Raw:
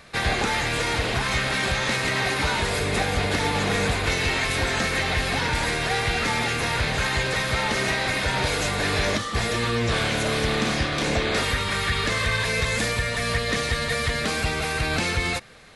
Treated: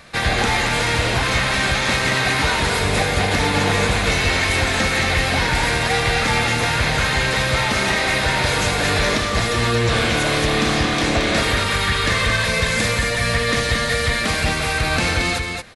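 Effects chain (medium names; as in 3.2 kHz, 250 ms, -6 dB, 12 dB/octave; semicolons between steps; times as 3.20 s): band-stop 410 Hz, Q 12; on a send: loudspeakers at several distances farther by 27 m -11 dB, 77 m -5 dB; on the sum: trim +4 dB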